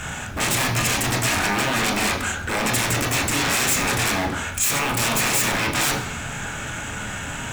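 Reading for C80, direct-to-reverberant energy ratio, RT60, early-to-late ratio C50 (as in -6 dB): 10.5 dB, 0.5 dB, 1.0 s, 8.0 dB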